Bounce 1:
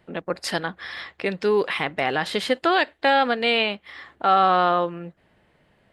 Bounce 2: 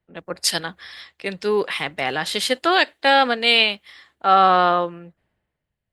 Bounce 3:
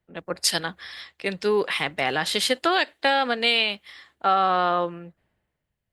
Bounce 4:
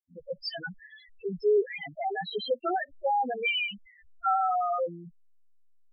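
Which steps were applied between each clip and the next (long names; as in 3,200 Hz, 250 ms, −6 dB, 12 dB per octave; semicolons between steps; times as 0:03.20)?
high-shelf EQ 3,700 Hz +11.5 dB; multiband upward and downward expander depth 70%
downward compressor 4 to 1, threshold −17 dBFS, peak gain reduction 7 dB
hold until the input has moved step −42 dBFS; spectral peaks only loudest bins 2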